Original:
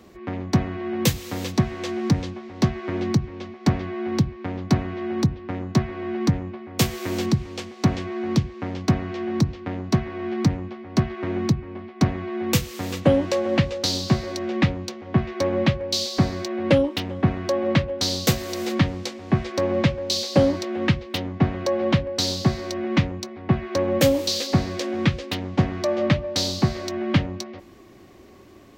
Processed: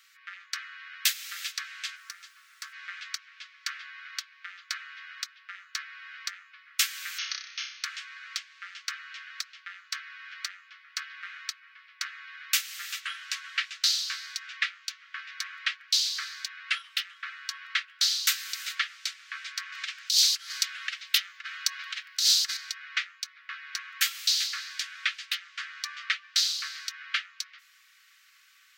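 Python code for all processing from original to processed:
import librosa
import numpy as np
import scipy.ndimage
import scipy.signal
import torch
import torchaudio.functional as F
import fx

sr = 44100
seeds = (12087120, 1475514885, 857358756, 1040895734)

y = fx.peak_eq(x, sr, hz=3200.0, db=-12.0, octaves=2.0, at=(1.95, 2.72), fade=0.02)
y = fx.dmg_noise_colour(y, sr, seeds[0], colour='brown', level_db=-40.0, at=(1.95, 2.72), fade=0.02)
y = fx.chain(y, sr, fx.brickwall_lowpass(high_hz=6600.0),
    fx.room_flutter(wall_m=5.3, rt60_s=0.48), at=(7.18, 7.84))
y = fx.chain(y, sr, fx.high_shelf(hz=4200.0, db=11.0),
    fx.over_compress(threshold_db=-21.0, ratio=-0.5), at=(19.72, 22.57))
y = scipy.signal.sosfilt(scipy.signal.butter(12, 1300.0, 'highpass', fs=sr, output='sos'), y)
y = y + 0.4 * np.pad(y, (int(5.2 * sr / 1000.0), 0))[:len(y)]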